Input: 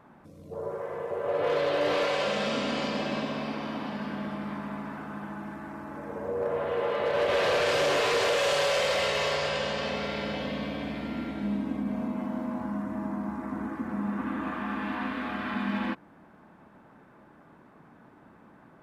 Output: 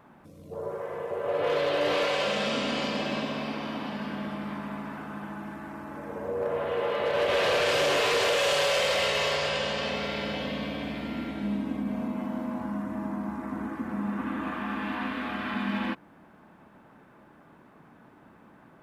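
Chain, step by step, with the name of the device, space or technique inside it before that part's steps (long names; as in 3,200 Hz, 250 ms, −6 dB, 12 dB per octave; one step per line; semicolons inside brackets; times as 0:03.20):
presence and air boost (parametric band 2,900 Hz +3 dB 0.77 octaves; high-shelf EQ 10,000 Hz +6.5 dB)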